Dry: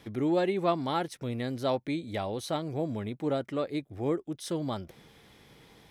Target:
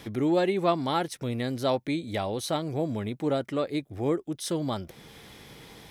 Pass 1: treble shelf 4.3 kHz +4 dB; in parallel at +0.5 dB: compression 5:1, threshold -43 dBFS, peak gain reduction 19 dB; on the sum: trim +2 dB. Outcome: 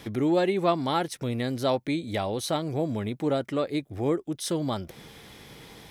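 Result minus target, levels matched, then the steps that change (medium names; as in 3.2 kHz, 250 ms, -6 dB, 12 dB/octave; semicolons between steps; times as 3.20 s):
compression: peak gain reduction -8 dB
change: compression 5:1, threshold -53 dBFS, peak gain reduction 27 dB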